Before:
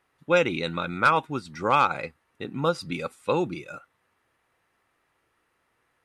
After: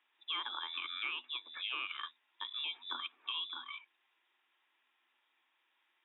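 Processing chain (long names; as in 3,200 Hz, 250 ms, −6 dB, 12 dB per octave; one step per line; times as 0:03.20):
brickwall limiter −15.5 dBFS, peak gain reduction 5.5 dB
voice inversion scrambler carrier 3,700 Hz
Chebyshev high-pass with heavy ripple 240 Hz, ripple 9 dB
downward compressor 3 to 1, threshold −39 dBFS, peak gain reduction 9.5 dB
level +1 dB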